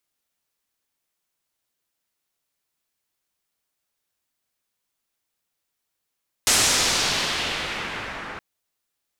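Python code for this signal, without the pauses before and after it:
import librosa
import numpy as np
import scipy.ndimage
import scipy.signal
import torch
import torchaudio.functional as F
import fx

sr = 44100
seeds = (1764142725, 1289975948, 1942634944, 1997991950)

y = fx.riser_noise(sr, seeds[0], length_s=1.92, colour='white', kind='lowpass', start_hz=8400.0, end_hz=1500.0, q=1.2, swell_db=-11, law='exponential')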